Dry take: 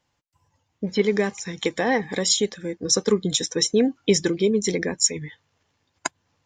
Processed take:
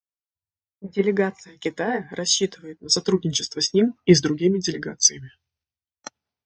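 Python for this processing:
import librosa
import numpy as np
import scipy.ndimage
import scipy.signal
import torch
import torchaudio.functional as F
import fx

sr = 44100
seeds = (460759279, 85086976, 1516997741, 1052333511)

y = fx.pitch_glide(x, sr, semitones=-3.0, runs='starting unshifted')
y = fx.band_widen(y, sr, depth_pct=100)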